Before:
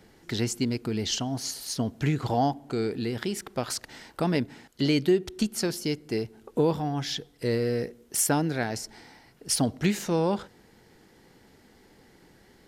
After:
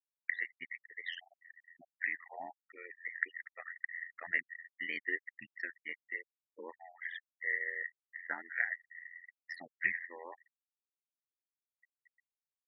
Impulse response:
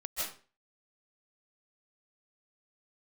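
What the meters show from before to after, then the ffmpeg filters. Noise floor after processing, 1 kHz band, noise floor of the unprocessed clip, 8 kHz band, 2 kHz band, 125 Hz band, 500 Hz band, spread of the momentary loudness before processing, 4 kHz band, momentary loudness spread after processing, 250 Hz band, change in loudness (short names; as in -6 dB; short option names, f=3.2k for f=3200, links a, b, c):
under -85 dBFS, -18.5 dB, -58 dBFS, under -40 dB, +3.5 dB, under -40 dB, -25.0 dB, 8 LU, -20.5 dB, 16 LU, -32.0 dB, -11.0 dB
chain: -af "bandpass=f=1.9k:t=q:w=15:csg=0,afftfilt=real='re*gte(hypot(re,im),0.00447)':imag='im*gte(hypot(re,im),0.00447)':win_size=1024:overlap=0.75,tremolo=f=86:d=0.889,volume=15.5dB"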